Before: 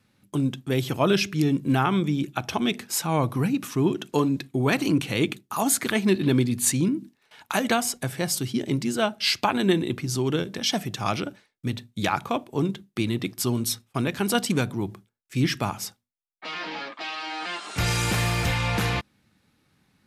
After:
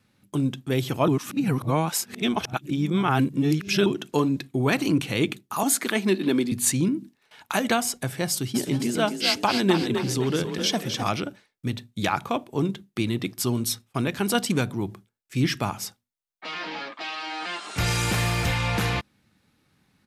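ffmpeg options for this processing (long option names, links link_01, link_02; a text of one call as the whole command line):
ffmpeg -i in.wav -filter_complex "[0:a]asettb=1/sr,asplit=3[link_01][link_02][link_03];[link_01]atrim=end=5.634[link_04];[link_02]atrim=start=5.63:end=6.52,asetpts=PTS-STARTPTS,afade=type=in:duration=0.004:curve=qsin,afade=type=out:start_time=0.886:duration=0.004:curve=qsin,highpass=frequency=200:width=0.5412,highpass=frequency=200:width=1.3066[link_05];[link_03]atrim=start=6.516[link_06];[link_04][link_05]acrossfade=duration=0.004:curve1=hsin:curve2=qsin[link_07];[link_07][link_06]acrossfade=duration=0.004:curve1=qsin:curve2=hsin,asplit=3[link_08][link_09][link_10];[link_08]afade=type=out:start_time=8.54:duration=0.02[link_11];[link_09]asplit=6[link_12][link_13][link_14][link_15][link_16][link_17];[link_13]adelay=258,afreqshift=31,volume=-7dB[link_18];[link_14]adelay=516,afreqshift=62,volume=-14.3dB[link_19];[link_15]adelay=774,afreqshift=93,volume=-21.7dB[link_20];[link_16]adelay=1032,afreqshift=124,volume=-29dB[link_21];[link_17]adelay=1290,afreqshift=155,volume=-36.3dB[link_22];[link_12][link_18][link_19][link_20][link_21][link_22]amix=inputs=6:normalize=0,afade=type=in:start_time=8.54:duration=0.02,afade=type=out:start_time=11.08:duration=0.02[link_23];[link_10]afade=type=in:start_time=11.08:duration=0.02[link_24];[link_11][link_23][link_24]amix=inputs=3:normalize=0,asplit=3[link_25][link_26][link_27];[link_25]atrim=end=1.082[link_28];[link_26]atrim=start=1.078:end=3.862,asetpts=PTS-STARTPTS,areverse[link_29];[link_27]atrim=start=3.858[link_30];[link_28][link_29]acrossfade=duration=0.004:curve1=hsin:curve2=hsin[link_31];[link_31][link_30]acrossfade=duration=0.004:curve1=hsin:curve2=hsin" out.wav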